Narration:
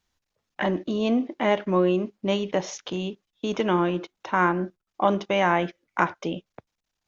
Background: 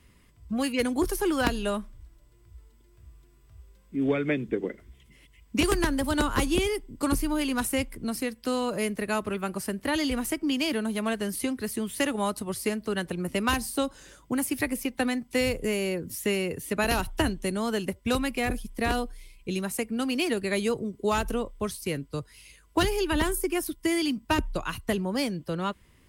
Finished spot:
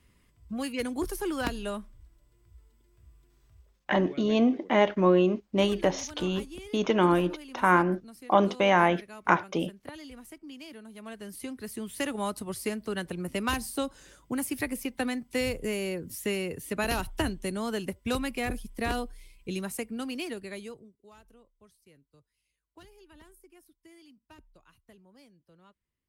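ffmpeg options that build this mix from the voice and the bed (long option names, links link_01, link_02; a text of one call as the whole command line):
ffmpeg -i stem1.wav -i stem2.wav -filter_complex "[0:a]adelay=3300,volume=0dB[link_01];[1:a]volume=9dB,afade=type=out:start_time=3.49:duration=0.34:silence=0.237137,afade=type=in:start_time=10.91:duration=1.35:silence=0.188365,afade=type=out:start_time=19.61:duration=1.36:silence=0.0530884[link_02];[link_01][link_02]amix=inputs=2:normalize=0" out.wav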